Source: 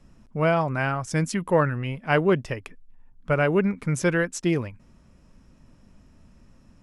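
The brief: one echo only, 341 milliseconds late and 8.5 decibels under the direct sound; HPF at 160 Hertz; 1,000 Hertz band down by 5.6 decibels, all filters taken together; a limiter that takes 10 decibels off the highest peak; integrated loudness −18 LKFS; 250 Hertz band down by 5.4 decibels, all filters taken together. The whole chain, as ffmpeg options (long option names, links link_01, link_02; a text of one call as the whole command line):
ffmpeg -i in.wav -af "highpass=160,equalizer=frequency=250:width_type=o:gain=-6.5,equalizer=frequency=1000:width_type=o:gain=-7.5,alimiter=limit=-19dB:level=0:latency=1,aecho=1:1:341:0.376,volume=13dB" out.wav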